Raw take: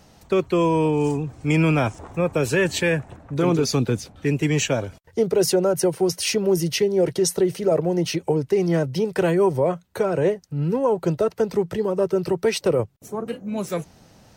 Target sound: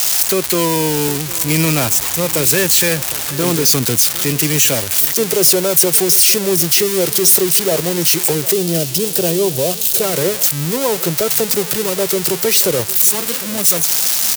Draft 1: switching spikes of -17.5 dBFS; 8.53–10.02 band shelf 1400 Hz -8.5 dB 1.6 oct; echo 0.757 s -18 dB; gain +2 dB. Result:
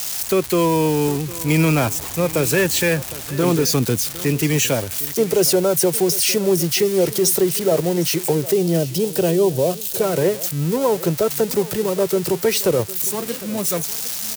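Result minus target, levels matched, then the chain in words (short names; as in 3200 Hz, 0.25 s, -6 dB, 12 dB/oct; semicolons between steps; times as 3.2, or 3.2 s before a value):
switching spikes: distortion -10 dB
switching spikes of -7 dBFS; 8.53–10.02 band shelf 1400 Hz -8.5 dB 1.6 oct; echo 0.757 s -18 dB; gain +2 dB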